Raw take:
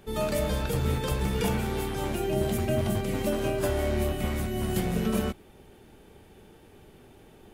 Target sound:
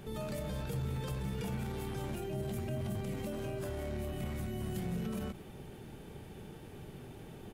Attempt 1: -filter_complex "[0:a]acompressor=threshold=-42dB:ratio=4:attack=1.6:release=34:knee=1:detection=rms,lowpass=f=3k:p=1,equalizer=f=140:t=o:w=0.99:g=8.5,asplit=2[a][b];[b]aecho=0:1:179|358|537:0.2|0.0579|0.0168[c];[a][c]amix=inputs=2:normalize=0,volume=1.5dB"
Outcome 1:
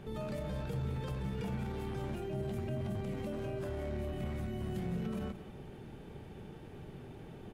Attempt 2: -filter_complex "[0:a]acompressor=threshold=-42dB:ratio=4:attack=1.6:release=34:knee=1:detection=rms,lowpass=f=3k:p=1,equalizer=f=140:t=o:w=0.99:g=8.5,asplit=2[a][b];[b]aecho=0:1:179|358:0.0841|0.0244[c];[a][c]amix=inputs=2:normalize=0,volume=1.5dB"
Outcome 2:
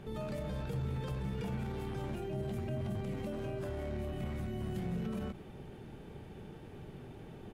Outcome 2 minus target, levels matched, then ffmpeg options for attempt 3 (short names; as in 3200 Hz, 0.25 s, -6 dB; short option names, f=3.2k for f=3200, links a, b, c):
4000 Hz band -3.5 dB
-filter_complex "[0:a]acompressor=threshold=-42dB:ratio=4:attack=1.6:release=34:knee=1:detection=rms,equalizer=f=140:t=o:w=0.99:g=8.5,asplit=2[a][b];[b]aecho=0:1:179|358:0.0841|0.0244[c];[a][c]amix=inputs=2:normalize=0,volume=1.5dB"